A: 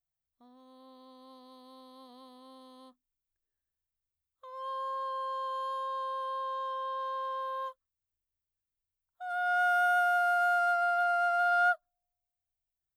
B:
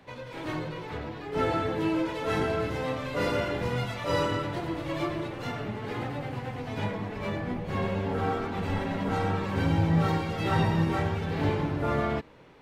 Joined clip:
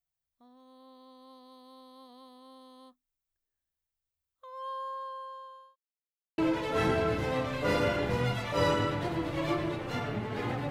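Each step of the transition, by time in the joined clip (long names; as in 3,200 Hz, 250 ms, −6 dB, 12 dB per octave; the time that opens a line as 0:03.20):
A
0:04.64–0:05.76: fade out linear
0:05.76–0:06.38: silence
0:06.38: continue with B from 0:01.90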